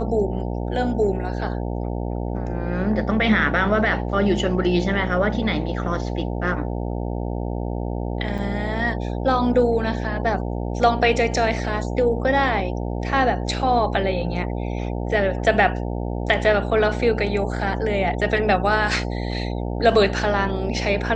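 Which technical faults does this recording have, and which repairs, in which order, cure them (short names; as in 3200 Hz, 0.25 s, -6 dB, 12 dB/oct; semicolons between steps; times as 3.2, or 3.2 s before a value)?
buzz 60 Hz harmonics 15 -26 dBFS
8.38–8.39 gap 6 ms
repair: de-hum 60 Hz, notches 15; interpolate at 8.38, 6 ms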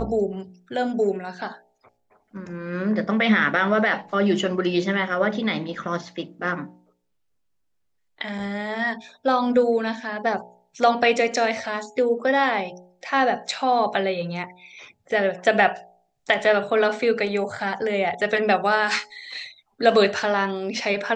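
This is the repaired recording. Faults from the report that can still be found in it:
none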